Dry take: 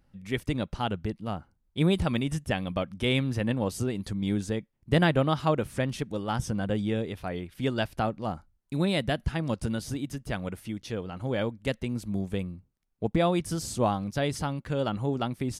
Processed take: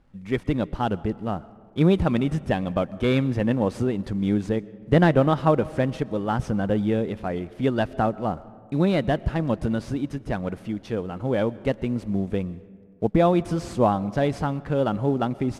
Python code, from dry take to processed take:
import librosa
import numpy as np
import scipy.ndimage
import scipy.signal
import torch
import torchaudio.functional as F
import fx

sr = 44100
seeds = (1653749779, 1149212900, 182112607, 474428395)

y = fx.cvsd(x, sr, bps=64000)
y = fx.lowpass(y, sr, hz=1200.0, slope=6)
y = fx.peak_eq(y, sr, hz=93.0, db=-4.5, octaves=1.8)
y = fx.rev_freeverb(y, sr, rt60_s=2.1, hf_ratio=0.4, predelay_ms=80, drr_db=19.5)
y = y * librosa.db_to_amplitude(7.5)